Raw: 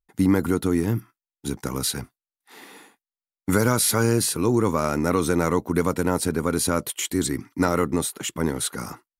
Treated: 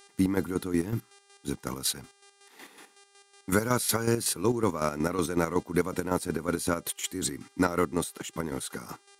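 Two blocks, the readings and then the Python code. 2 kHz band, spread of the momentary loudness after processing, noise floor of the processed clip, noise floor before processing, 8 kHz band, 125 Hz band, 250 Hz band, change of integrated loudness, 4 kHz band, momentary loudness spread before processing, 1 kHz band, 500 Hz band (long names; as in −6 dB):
−5.0 dB, 10 LU, −64 dBFS, below −85 dBFS, −6.0 dB, −8.0 dB, −6.5 dB, −6.0 dB, −5.5 dB, 9 LU, −5.5 dB, −5.5 dB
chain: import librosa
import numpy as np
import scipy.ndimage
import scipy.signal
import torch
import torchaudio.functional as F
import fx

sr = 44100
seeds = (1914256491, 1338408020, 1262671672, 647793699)

y = fx.dmg_buzz(x, sr, base_hz=400.0, harmonics=26, level_db=-53.0, tilt_db=-2, odd_only=False)
y = fx.low_shelf(y, sr, hz=110.0, db=-6.0)
y = fx.chopper(y, sr, hz=5.4, depth_pct=60, duty_pct=40)
y = y * librosa.db_to_amplitude(-2.5)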